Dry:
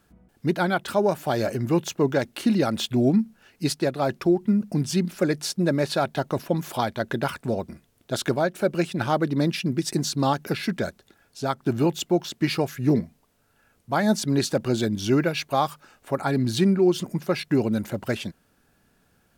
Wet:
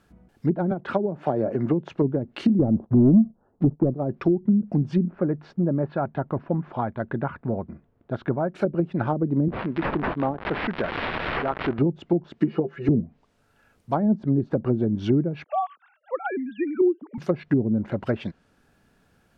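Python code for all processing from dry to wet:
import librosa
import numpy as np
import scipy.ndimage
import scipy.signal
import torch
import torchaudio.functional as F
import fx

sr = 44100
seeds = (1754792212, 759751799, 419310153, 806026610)

y = fx.chain(x, sr, fx.highpass(hz=190.0, slope=6),
    fx.band_squash(depth_pct=70), at=(0.71, 1.9))
y = fx.chain(y, sr, fx.cheby2_lowpass(hz=2100.0, order=4, stop_db=40),
    fx.leveller(passes=2), at=(2.59, 3.95))
y = fx.chain(y, sr, fx.lowpass(hz=1200.0, slope=12),
    fx.dynamic_eq(hz=510.0, q=0.86, threshold_db=-37.0, ratio=4.0, max_db=-5), at=(5.06, 8.54))
y = fx.chain(y, sr, fx.crossing_spikes(level_db=-19.0),
    fx.highpass(hz=330.0, slope=6),
    fx.resample_linear(factor=6), at=(9.48, 11.79))
y = fx.chain(y, sr, fx.bass_treble(bass_db=-15, treble_db=0),
    fx.comb(ms=5.9, depth=0.95),
    fx.small_body(hz=(210.0, 400.0, 2900.0), ring_ms=95, db=15), at=(12.39, 12.89))
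y = fx.chain(y, sr, fx.sine_speech(),
    fx.highpass(hz=360.0, slope=12), at=(15.44, 17.18))
y = fx.high_shelf(y, sr, hz=6300.0, db=-9.0)
y = fx.env_lowpass_down(y, sr, base_hz=320.0, full_db=-18.0)
y = y * 10.0 ** (2.0 / 20.0)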